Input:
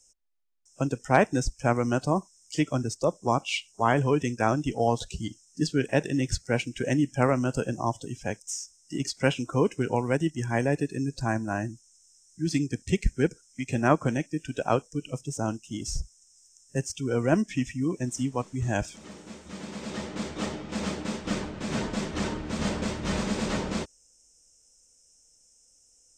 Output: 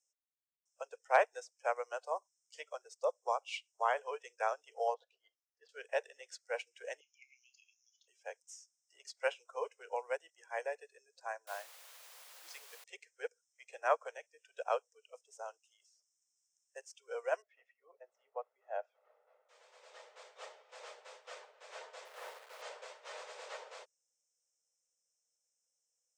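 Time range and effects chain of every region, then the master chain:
4.94–5.69 s: band-pass 450–3100 Hz + treble shelf 2.4 kHz -8.5 dB
7.00–8.08 s: brick-wall FIR band-pass 2.1–7.1 kHz + doubling 29 ms -12 dB
11.47–12.84 s: high-pass 110 Hz + word length cut 6-bit, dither triangular
15.70–16.76 s: high-pass 920 Hz + compression, threshold -45 dBFS
17.42–19.49 s: low-pass 1.3 kHz + comb 1.5 ms, depth 44%
22.05–22.62 s: low-pass 2.6 kHz + doubling 44 ms -6 dB + word length cut 6-bit, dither none
whole clip: steep high-pass 460 Hz 72 dB/octave; treble shelf 4.9 kHz -6 dB; upward expansion 1.5:1, over -47 dBFS; trim -5 dB

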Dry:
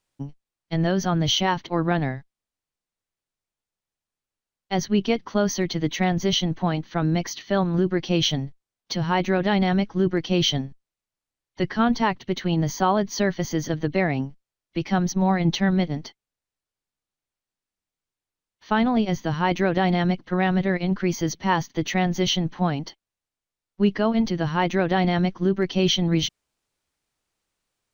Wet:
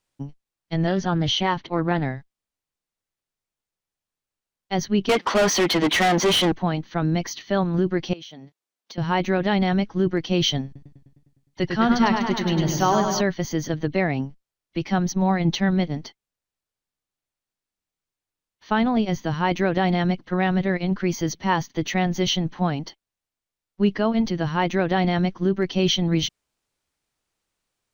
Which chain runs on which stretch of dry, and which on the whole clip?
0.87–2.05 s: low-pass 4.7 kHz + loudspeaker Doppler distortion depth 0.16 ms
5.09–6.52 s: high-pass 230 Hz + treble shelf 2.8 kHz -7.5 dB + overdrive pedal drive 31 dB, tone 4.2 kHz, clips at -11.5 dBFS
8.13–8.98 s: high-pass 250 Hz + compression 8:1, threshold -38 dBFS
10.65–13.21 s: treble shelf 3.9 kHz +4 dB + modulated delay 102 ms, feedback 67%, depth 74 cents, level -5 dB
whole clip: none

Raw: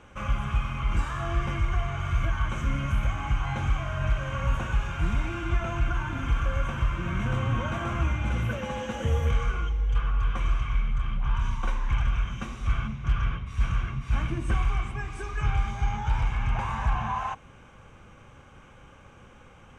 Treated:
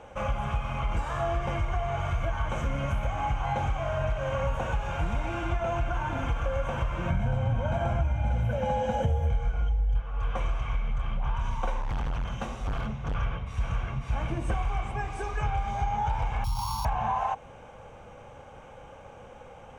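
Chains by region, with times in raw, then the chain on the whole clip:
7.10–10.02 s: bass shelf 330 Hz +9 dB + comb 1.3 ms, depth 50%
11.81–13.15 s: band-stop 2.3 kHz, Q 18 + hard clipper -27 dBFS
16.44–16.85 s: sorted samples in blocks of 8 samples + Chebyshev band-stop 280–950 Hz, order 3 + static phaser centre 730 Hz, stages 4
whole clip: high-order bell 640 Hz +10.5 dB 1.2 oct; compression, threshold -24 dBFS

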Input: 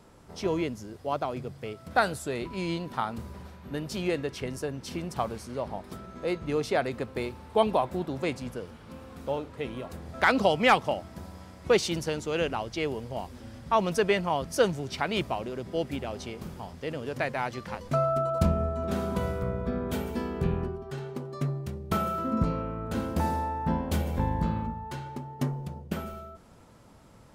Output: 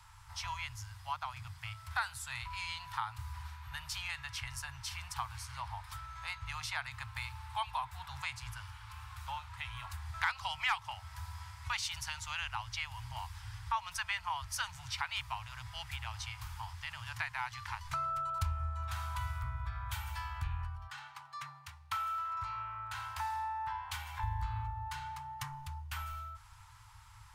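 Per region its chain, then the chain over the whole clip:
20.87–24.23 s: high-pass 540 Hz 6 dB/octave + treble shelf 6.6 kHz -8 dB
whole clip: Chebyshev band-stop 110–900 Hz, order 4; compression 2:1, threshold -41 dBFS; trim +2.5 dB

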